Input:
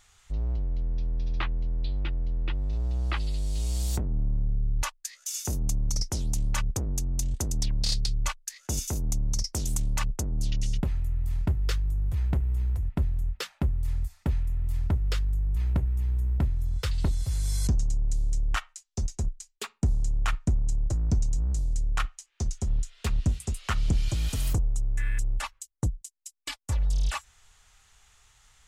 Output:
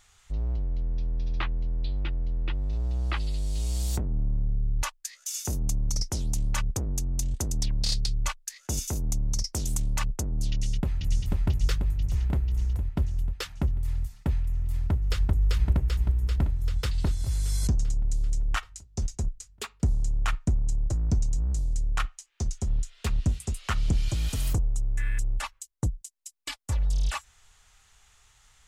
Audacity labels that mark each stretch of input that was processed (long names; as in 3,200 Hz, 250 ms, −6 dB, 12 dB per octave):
10.510000	11.190000	delay throw 490 ms, feedback 65%, level −2.5 dB
14.710000	15.330000	delay throw 390 ms, feedback 70%, level −1.5 dB